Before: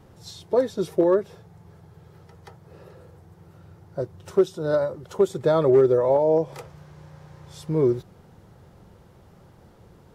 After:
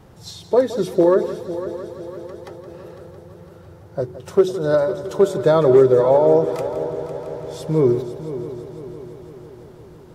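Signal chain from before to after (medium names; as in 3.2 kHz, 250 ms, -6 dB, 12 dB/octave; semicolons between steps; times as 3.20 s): de-hum 46.2 Hz, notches 9; on a send: multi-head delay 168 ms, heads first and third, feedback 67%, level -14 dB; on the sum: trim +5 dB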